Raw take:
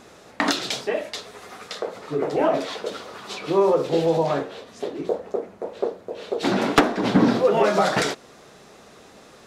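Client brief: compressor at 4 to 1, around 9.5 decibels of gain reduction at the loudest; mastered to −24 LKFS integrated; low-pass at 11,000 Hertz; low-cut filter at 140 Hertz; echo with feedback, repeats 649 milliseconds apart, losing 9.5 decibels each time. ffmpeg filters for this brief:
ffmpeg -i in.wav -af "highpass=140,lowpass=11000,acompressor=threshold=-24dB:ratio=4,aecho=1:1:649|1298|1947|2596:0.335|0.111|0.0365|0.012,volume=5.5dB" out.wav

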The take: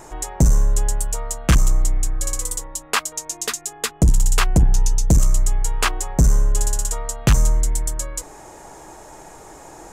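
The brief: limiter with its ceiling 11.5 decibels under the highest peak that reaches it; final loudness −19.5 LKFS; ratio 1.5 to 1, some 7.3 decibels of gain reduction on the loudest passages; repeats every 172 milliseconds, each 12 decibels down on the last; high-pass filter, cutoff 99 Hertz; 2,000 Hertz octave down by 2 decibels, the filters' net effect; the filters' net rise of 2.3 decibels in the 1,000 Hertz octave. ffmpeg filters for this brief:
ffmpeg -i in.wav -af "highpass=99,equalizer=frequency=1000:width_type=o:gain=4,equalizer=frequency=2000:width_type=o:gain=-4,acompressor=threshold=-33dB:ratio=1.5,alimiter=limit=-22dB:level=0:latency=1,aecho=1:1:172|344|516:0.251|0.0628|0.0157,volume=14.5dB" out.wav

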